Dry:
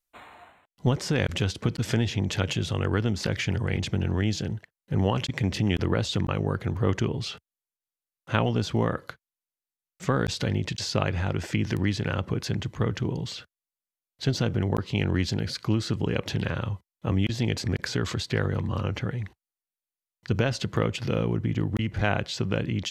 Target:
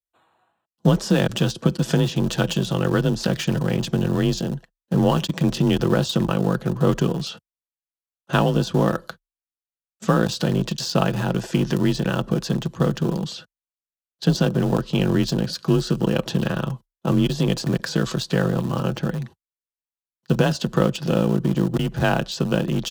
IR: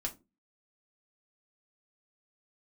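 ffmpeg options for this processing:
-filter_complex "[0:a]asplit=2[a][b];[b]aeval=exprs='val(0)*gte(abs(val(0)),0.0631)':c=same,volume=-7dB[c];[a][c]amix=inputs=2:normalize=0,equalizer=f=2.1k:t=o:w=0.36:g=-14,aecho=1:1:6.3:0.34,agate=range=-17dB:threshold=-44dB:ratio=16:detection=peak,afreqshift=30,volume=3dB"

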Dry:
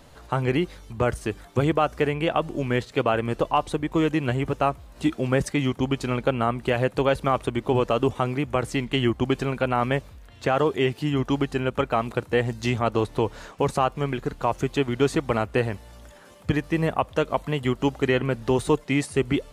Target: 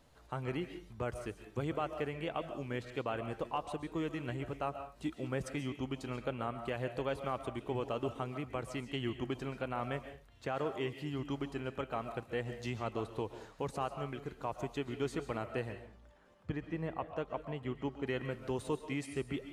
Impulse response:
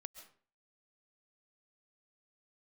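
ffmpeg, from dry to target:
-filter_complex "[0:a]asettb=1/sr,asplit=3[a][b][c];[a]atrim=end=15.724[d];[b]atrim=start=15.72:end=18.07,asetpts=PTS-STARTPTS,afade=t=in:d=0.004:c=qsin,afade=t=out:st=2.346:d=0.004:c=qsin,aemphasis=mode=reproduction:type=75kf[e];[c]atrim=start=18.066[f];[d][e]acrossfade=d=0.004:c1=hsin:c2=qsin[g];[g][f]acrossfade=d=0.004:c1=qsin:c2=hsin[h];[1:a]atrim=start_sample=2205,afade=t=out:st=0.31:d=0.01,atrim=end_sample=14112[i];[h][i]afir=irnorm=-1:irlink=0,volume=-9dB"

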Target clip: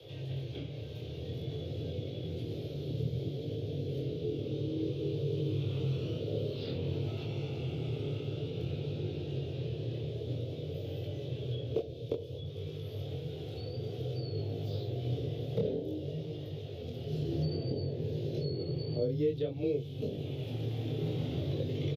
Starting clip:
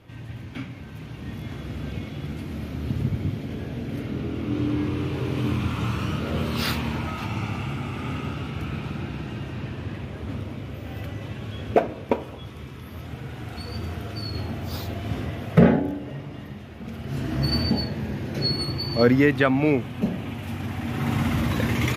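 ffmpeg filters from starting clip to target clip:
-filter_complex "[0:a]acrossover=split=5100[a][b];[b]acompressor=threshold=-49dB:ratio=4:attack=1:release=60[c];[a][c]amix=inputs=2:normalize=0,firequalizer=gain_entry='entry(120,0);entry(180,-18);entry(430,12);entry(960,-14);entry(1800,-12);entry(3400,11);entry(8200,-6);entry(14000,2)':delay=0.05:min_phase=1,acrossover=split=110|320|2700[d][e][f][g];[d]acompressor=threshold=-44dB:ratio=4[h];[e]acompressor=threshold=-34dB:ratio=4[i];[f]acompressor=threshold=-50dB:ratio=4[j];[g]acompressor=threshold=-60dB:ratio=4[k];[h][i][j][k]amix=inputs=4:normalize=0,afreqshift=18,flanger=delay=19.5:depth=7.4:speed=0.55,volume=3.5dB"

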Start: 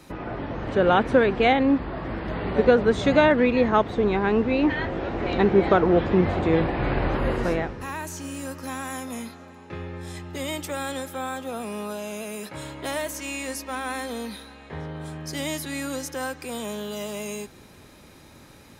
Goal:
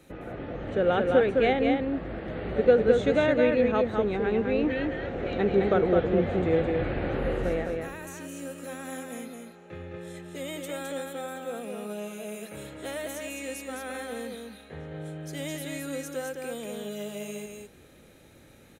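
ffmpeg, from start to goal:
-af "equalizer=f=500:t=o:w=0.33:g=6,equalizer=f=1k:t=o:w=0.33:g=-11,equalizer=f=5k:t=o:w=0.33:g=-10,aecho=1:1:212:0.631,volume=-6.5dB"

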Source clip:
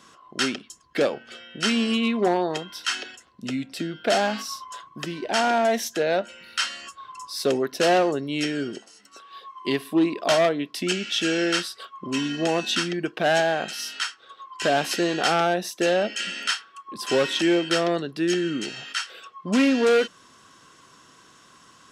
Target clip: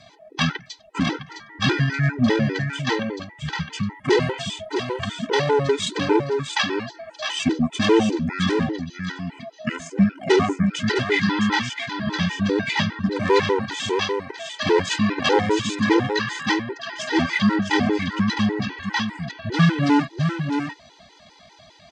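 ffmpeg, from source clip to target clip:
-filter_complex "[0:a]asetrate=26990,aresample=44100,atempo=1.63392,highshelf=f=4.8k:g=7.5,asplit=2[a][b];[b]aecho=0:1:660:0.501[c];[a][c]amix=inputs=2:normalize=0,afftfilt=real='re*gt(sin(2*PI*5*pts/sr)*(1-2*mod(floor(b*sr/1024/260),2)),0)':imag='im*gt(sin(2*PI*5*pts/sr)*(1-2*mod(floor(b*sr/1024/260),2)),0)':win_size=1024:overlap=0.75,volume=5dB"

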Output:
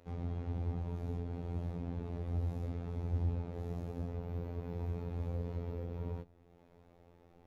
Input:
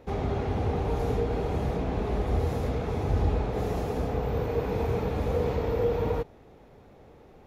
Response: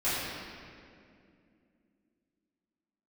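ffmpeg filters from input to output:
-filter_complex "[0:a]acrossover=split=280[a][b];[b]acompressor=threshold=-59dB:ratio=1.5[c];[a][c]amix=inputs=2:normalize=0,afftfilt=real='hypot(re,im)*cos(PI*b)':imag='0':win_size=2048:overlap=0.75,volume=-5dB"

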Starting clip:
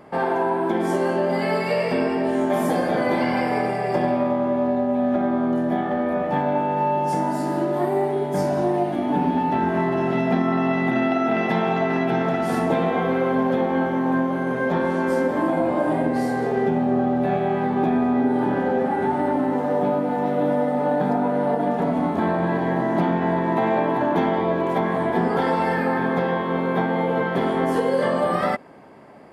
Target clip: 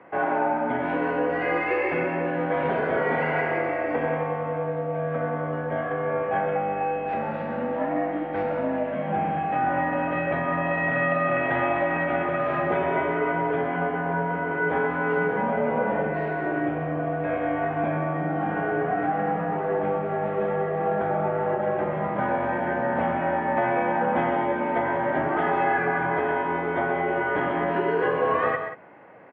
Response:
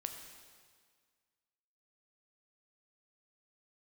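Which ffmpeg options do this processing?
-af "acrusher=samples=4:mix=1:aa=0.000001,highpass=f=200:t=q:w=0.5412,highpass=f=200:t=q:w=1.307,lowpass=f=2.6k:t=q:w=0.5176,lowpass=f=2.6k:t=q:w=0.7071,lowpass=f=2.6k:t=q:w=1.932,afreqshift=-93,aemphasis=mode=production:type=riaa,aecho=1:1:128.3|183.7:0.355|0.251"

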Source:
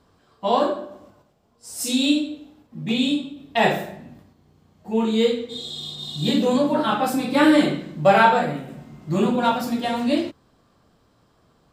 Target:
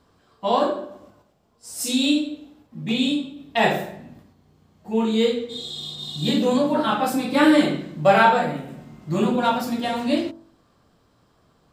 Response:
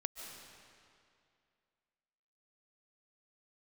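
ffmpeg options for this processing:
-af "bandreject=f=47.29:t=h:w=4,bandreject=f=94.58:t=h:w=4,bandreject=f=141.87:t=h:w=4,bandreject=f=189.16:t=h:w=4,bandreject=f=236.45:t=h:w=4,bandreject=f=283.74:t=h:w=4,bandreject=f=331.03:t=h:w=4,bandreject=f=378.32:t=h:w=4,bandreject=f=425.61:t=h:w=4,bandreject=f=472.9:t=h:w=4,bandreject=f=520.19:t=h:w=4,bandreject=f=567.48:t=h:w=4,bandreject=f=614.77:t=h:w=4,bandreject=f=662.06:t=h:w=4,bandreject=f=709.35:t=h:w=4,bandreject=f=756.64:t=h:w=4,bandreject=f=803.93:t=h:w=4,bandreject=f=851.22:t=h:w=4,bandreject=f=898.51:t=h:w=4,bandreject=f=945.8:t=h:w=4"

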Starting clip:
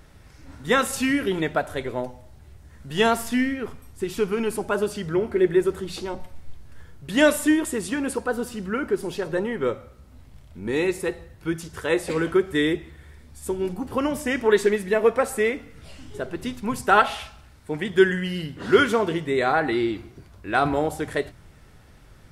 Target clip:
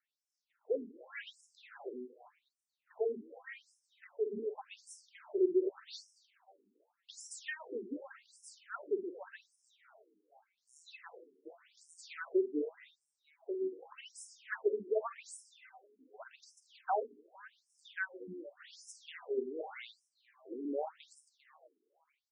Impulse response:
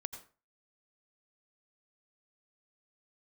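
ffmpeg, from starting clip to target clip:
-filter_complex "[0:a]agate=range=-18dB:threshold=-39dB:ratio=16:detection=peak,asplit=6[a][b][c][d][e][f];[b]adelay=230,afreqshift=100,volume=-21dB[g];[c]adelay=460,afreqshift=200,volume=-25.6dB[h];[d]adelay=690,afreqshift=300,volume=-30.2dB[i];[e]adelay=920,afreqshift=400,volume=-34.7dB[j];[f]adelay=1150,afreqshift=500,volume=-39.3dB[k];[a][g][h][i][j][k]amix=inputs=6:normalize=0[l];[1:a]atrim=start_sample=2205,atrim=end_sample=4410,asetrate=79380,aresample=44100[m];[l][m]afir=irnorm=-1:irlink=0,afftfilt=real='re*between(b*sr/1024,300*pow(7300/300,0.5+0.5*sin(2*PI*0.86*pts/sr))/1.41,300*pow(7300/300,0.5+0.5*sin(2*PI*0.86*pts/sr))*1.41)':imag='im*between(b*sr/1024,300*pow(7300/300,0.5+0.5*sin(2*PI*0.86*pts/sr))/1.41,300*pow(7300/300,0.5+0.5*sin(2*PI*0.86*pts/sr))*1.41)':win_size=1024:overlap=0.75,volume=-3dB"

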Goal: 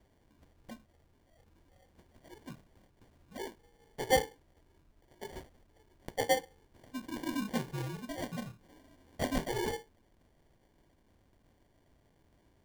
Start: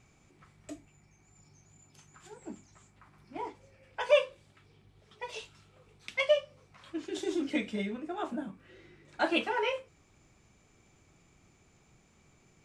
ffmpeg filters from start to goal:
-af "afreqshift=-68,acrusher=samples=34:mix=1:aa=0.000001,volume=-3.5dB"

